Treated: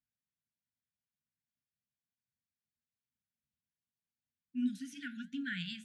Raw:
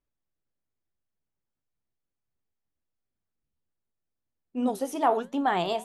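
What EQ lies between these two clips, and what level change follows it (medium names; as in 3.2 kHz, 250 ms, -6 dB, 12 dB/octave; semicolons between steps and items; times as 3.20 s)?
high-pass 99 Hz 12 dB/octave; brick-wall FIR band-stop 280–1400 Hz; distance through air 74 m; -4.5 dB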